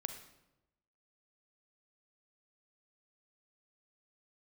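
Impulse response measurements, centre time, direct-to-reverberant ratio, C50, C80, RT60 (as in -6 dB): 17 ms, 7.0 dB, 8.0 dB, 11.0 dB, 0.95 s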